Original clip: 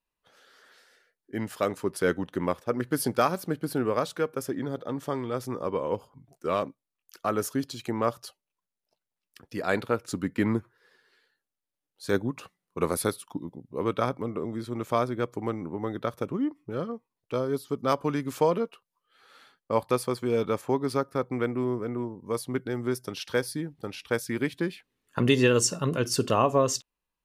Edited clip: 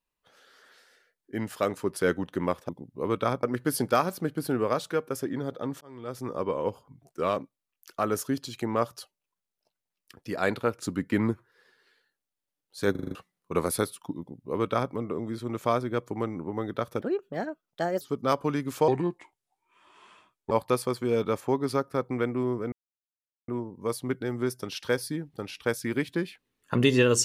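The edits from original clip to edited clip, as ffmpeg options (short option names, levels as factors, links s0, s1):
-filter_complex "[0:a]asplit=15[s0][s1][s2][s3][s4][s5][s6][s7][s8][s9][s10][s11][s12][s13][s14];[s0]atrim=end=2.692[s15];[s1]atrim=start=13.448:end=14.192[s16];[s2]atrim=start=2.688:end=5.07,asetpts=PTS-STARTPTS,afade=t=out:st=2.378:d=0.004:c=hsin[s17];[s3]atrim=start=5.07:end=12.212,asetpts=PTS-STARTPTS,afade=t=in:d=0.53[s18];[s4]atrim=start=12.168:end=12.212[s19];[s5]atrim=start=12.168:end=12.212[s20];[s6]atrim=start=12.168:end=12.212[s21];[s7]atrim=start=12.168:end=12.212[s22];[s8]atrim=start=12.168:end=12.212[s23];[s9]atrim=start=12.408:end=16.274[s24];[s10]atrim=start=16.27:end=17.61,asetpts=PTS-STARTPTS,asetrate=59094,aresample=44100[s25];[s11]atrim=start=17.606:end=18.484[s26];[s12]atrim=start=18.48:end=19.72,asetpts=PTS-STARTPTS,asetrate=33516,aresample=44100[s27];[s13]atrim=start=19.716:end=21.93,asetpts=PTS-STARTPTS,afade=t=out:st=2.21:d=0.004:c=hsin,apad=pad_dur=0.76[s28];[s14]atrim=start=21.93,asetpts=PTS-STARTPTS,afade=t=in:d=0.004:c=hsin[s29];[s15][s16]acrossfade=d=0.004:c1=hsin:c2=hsin[s30];[s17][s18]concat=n=2:v=0:a=1[s31];[s30][s31]acrossfade=d=0.004:c1=hsin:c2=hsin[s32];[s32][s19]acrossfade=d=0.004:c1=hsin:c2=hsin[s33];[s33][s20]acrossfade=d=0.004:c1=hsin:c2=hsin[s34];[s34][s21]acrossfade=d=0.004:c1=hsin:c2=hsin[s35];[s35][s22]acrossfade=d=0.004:c1=hsin:c2=hsin[s36];[s36][s23]acrossfade=d=0.004:c1=hsin:c2=hsin[s37];[s37][s24]acrossfade=d=0.004:c1=hsin:c2=hsin[s38];[s38][s25]acrossfade=d=0.004:c1=hsin:c2=hsin[s39];[s39][s26]acrossfade=d=0.004:c1=hsin:c2=hsin[s40];[s40][s27]acrossfade=d=0.004:c1=hsin:c2=hsin[s41];[s28][s29]concat=n=2:v=0:a=1[s42];[s41][s42]acrossfade=d=0.004:c1=hsin:c2=hsin"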